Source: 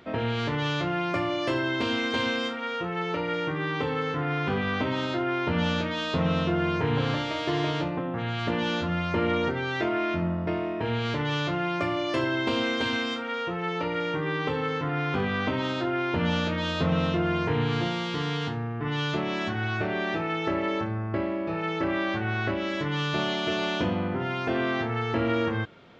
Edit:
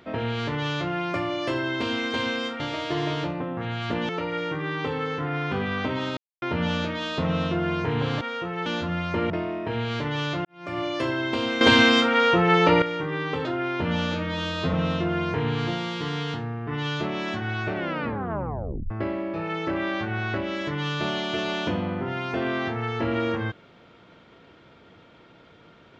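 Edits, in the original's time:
0:02.60–0:03.05: swap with 0:07.17–0:08.66
0:05.13–0:05.38: silence
0:09.30–0:10.44: remove
0:11.59–0:11.93: fade in quadratic
0:12.75–0:13.96: clip gain +11.5 dB
0:14.59–0:15.79: remove
0:16.46–0:16.87: time-stretch 1.5×
0:19.87: tape stop 1.17 s

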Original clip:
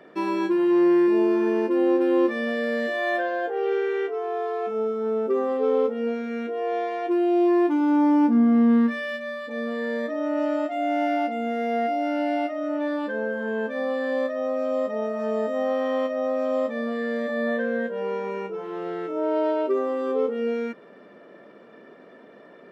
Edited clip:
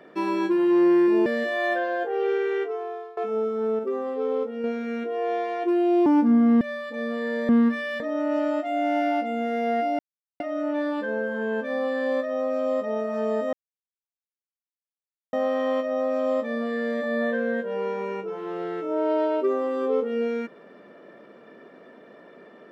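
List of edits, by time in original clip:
0:01.26–0:02.69: remove
0:04.08–0:04.60: fade out, to −22 dB
0:05.22–0:06.07: clip gain −4.5 dB
0:07.49–0:08.12: remove
0:08.67–0:09.18: move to 0:10.06
0:12.05–0:12.46: silence
0:15.59: splice in silence 1.80 s

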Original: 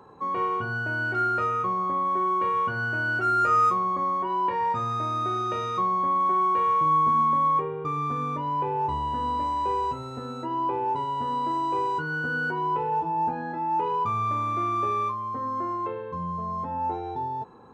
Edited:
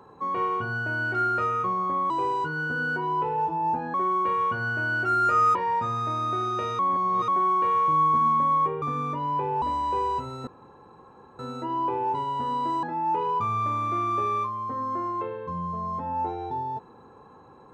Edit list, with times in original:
0:03.71–0:04.48: remove
0:05.72–0:06.21: reverse
0:07.75–0:08.05: remove
0:08.85–0:09.35: remove
0:10.20: splice in room tone 0.92 s
0:11.64–0:13.48: move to 0:02.10

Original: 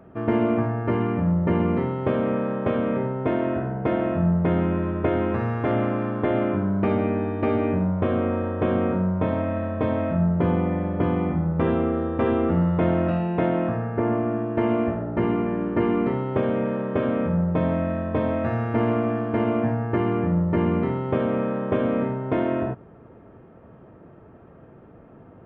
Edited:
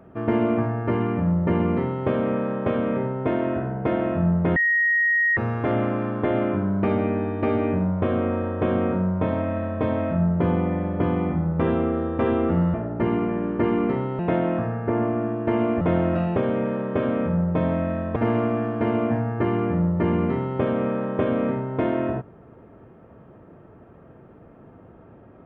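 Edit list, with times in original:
0:04.56–0:05.37: beep over 1,880 Hz −17 dBFS
0:12.74–0:13.29: swap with 0:14.91–0:16.36
0:18.16–0:18.69: remove

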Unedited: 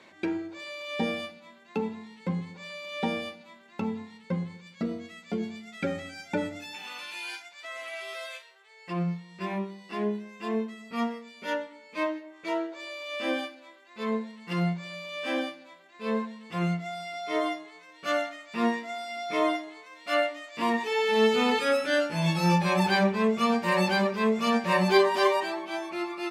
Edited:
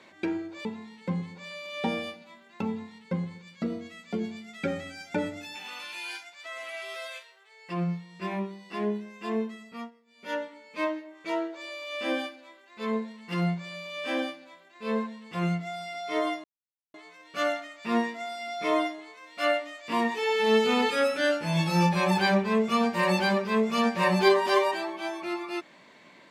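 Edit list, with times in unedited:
0:00.65–0:01.84: remove
0:10.75–0:11.60: duck −22 dB, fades 0.35 s
0:17.63: splice in silence 0.50 s

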